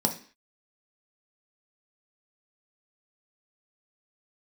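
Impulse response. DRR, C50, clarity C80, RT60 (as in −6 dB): 3.0 dB, 12.0 dB, 17.0 dB, 0.45 s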